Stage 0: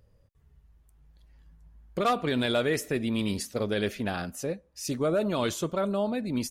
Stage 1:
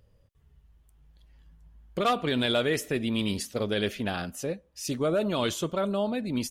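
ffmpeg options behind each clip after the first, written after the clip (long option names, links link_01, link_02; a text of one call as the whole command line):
ffmpeg -i in.wav -af "equalizer=frequency=3100:width=3.1:gain=5.5" out.wav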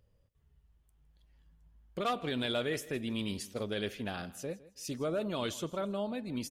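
ffmpeg -i in.wav -af "aecho=1:1:160|320:0.112|0.0269,volume=-7.5dB" out.wav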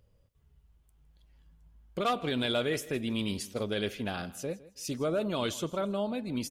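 ffmpeg -i in.wav -af "bandreject=frequency=1800:width=18,volume=3.5dB" out.wav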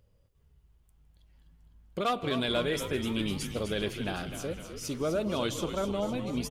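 ffmpeg -i in.wav -filter_complex "[0:a]asplit=9[link_01][link_02][link_03][link_04][link_05][link_06][link_07][link_08][link_09];[link_02]adelay=253,afreqshift=-75,volume=-9dB[link_10];[link_03]adelay=506,afreqshift=-150,volume=-13dB[link_11];[link_04]adelay=759,afreqshift=-225,volume=-17dB[link_12];[link_05]adelay=1012,afreqshift=-300,volume=-21dB[link_13];[link_06]adelay=1265,afreqshift=-375,volume=-25.1dB[link_14];[link_07]adelay=1518,afreqshift=-450,volume=-29.1dB[link_15];[link_08]adelay=1771,afreqshift=-525,volume=-33.1dB[link_16];[link_09]adelay=2024,afreqshift=-600,volume=-37.1dB[link_17];[link_01][link_10][link_11][link_12][link_13][link_14][link_15][link_16][link_17]amix=inputs=9:normalize=0" out.wav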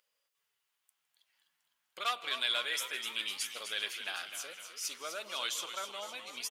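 ffmpeg -i in.wav -af "highpass=1500,volume=2.5dB" out.wav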